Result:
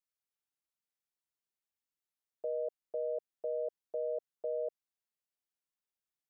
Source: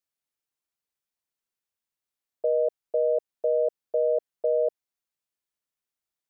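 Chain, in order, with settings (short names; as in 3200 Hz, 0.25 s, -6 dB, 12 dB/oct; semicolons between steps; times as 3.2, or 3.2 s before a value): limiter -22 dBFS, peak gain reduction 5 dB; gain -7 dB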